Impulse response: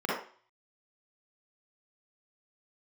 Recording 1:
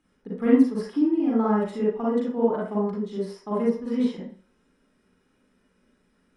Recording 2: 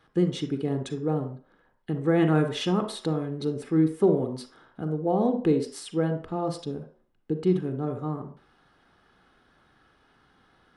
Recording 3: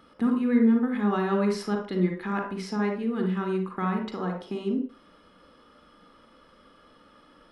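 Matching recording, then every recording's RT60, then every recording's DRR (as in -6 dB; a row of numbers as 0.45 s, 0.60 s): 1; 0.45 s, 0.45 s, 0.45 s; -6.5 dB, 7.0 dB, 2.0 dB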